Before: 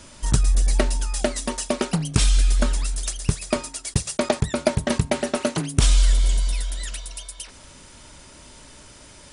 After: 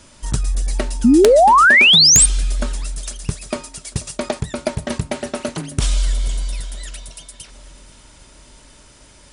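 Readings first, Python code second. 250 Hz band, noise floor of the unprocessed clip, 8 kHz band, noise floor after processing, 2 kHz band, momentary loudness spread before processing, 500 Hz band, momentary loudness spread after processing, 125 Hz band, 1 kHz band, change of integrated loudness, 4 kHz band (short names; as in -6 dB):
+7.0 dB, -46 dBFS, +10.0 dB, -47 dBFS, +16.5 dB, 11 LU, +8.0 dB, 21 LU, -1.5 dB, +15.5 dB, +10.0 dB, +14.0 dB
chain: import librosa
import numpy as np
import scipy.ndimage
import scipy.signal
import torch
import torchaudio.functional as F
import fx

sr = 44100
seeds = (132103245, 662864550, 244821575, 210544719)

y = fx.echo_swing(x, sr, ms=811, ratio=1.5, feedback_pct=47, wet_db=-20.5)
y = fx.spec_paint(y, sr, seeds[0], shape='rise', start_s=1.04, length_s=1.22, low_hz=220.0, high_hz=9100.0, level_db=-8.0)
y = (np.mod(10.0 ** (-0.5 / 20.0) * y + 1.0, 2.0) - 1.0) / 10.0 ** (-0.5 / 20.0)
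y = y * 10.0 ** (-1.5 / 20.0)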